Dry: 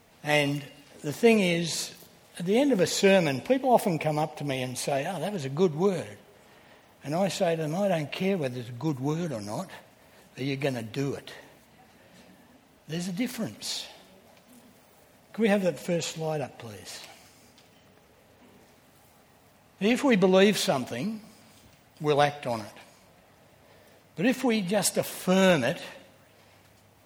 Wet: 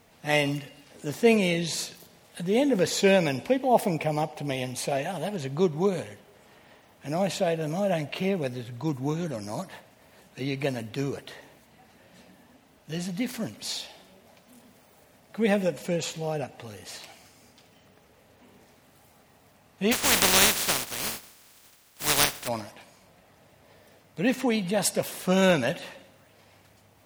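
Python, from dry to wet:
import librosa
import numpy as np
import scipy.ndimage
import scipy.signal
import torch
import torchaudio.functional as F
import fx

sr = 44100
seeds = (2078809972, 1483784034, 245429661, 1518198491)

y = fx.spec_flatten(x, sr, power=0.19, at=(19.91, 22.47), fade=0.02)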